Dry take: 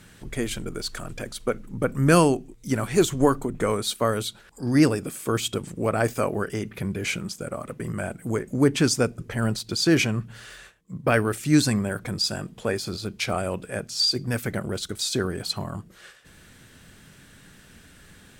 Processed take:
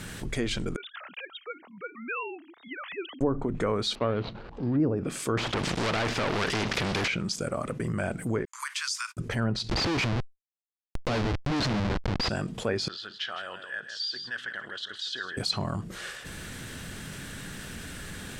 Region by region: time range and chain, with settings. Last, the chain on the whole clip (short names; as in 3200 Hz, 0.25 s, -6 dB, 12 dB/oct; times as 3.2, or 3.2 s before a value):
0.76–3.21 sine-wave speech + differentiator
3.95–4.8 median filter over 25 samples + LPF 4300 Hz 24 dB/oct
5.37–7.08 sample leveller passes 5 + spectral compressor 2:1
8.45–9.17 gate -34 dBFS, range -54 dB + steep high-pass 980 Hz 96 dB/oct + compressor 3:1, threshold -35 dBFS
9.69–12.29 bell 68 Hz -3 dB 1.2 oct + Schmitt trigger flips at -27 dBFS
12.88–15.37 double band-pass 2300 Hz, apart 0.84 oct + air absorption 70 m + echo 0.16 s -13.5 dB
whole clip: treble ducked by the level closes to 690 Hz, closed at -16 dBFS; dynamic EQ 4900 Hz, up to +5 dB, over -48 dBFS, Q 1.2; fast leveller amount 50%; gain -8 dB